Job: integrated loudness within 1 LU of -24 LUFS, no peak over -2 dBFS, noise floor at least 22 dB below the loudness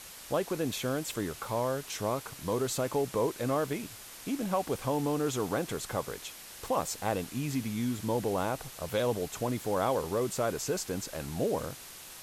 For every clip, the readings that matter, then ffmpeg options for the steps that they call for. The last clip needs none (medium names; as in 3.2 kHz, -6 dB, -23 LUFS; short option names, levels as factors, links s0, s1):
noise floor -48 dBFS; noise floor target -55 dBFS; loudness -32.5 LUFS; peak level -16.0 dBFS; loudness target -24.0 LUFS
-> -af "afftdn=nr=7:nf=-48"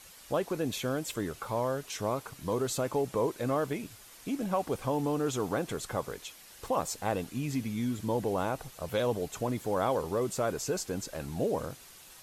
noise floor -53 dBFS; noise floor target -55 dBFS
-> -af "afftdn=nr=6:nf=-53"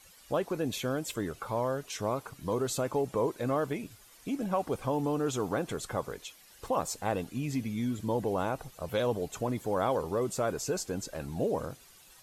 noise floor -57 dBFS; loudness -32.5 LUFS; peak level -16.5 dBFS; loudness target -24.0 LUFS
-> -af "volume=2.66"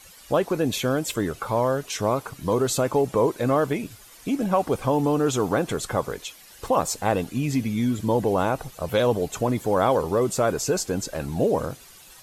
loudness -24.0 LUFS; peak level -8.0 dBFS; noise floor -48 dBFS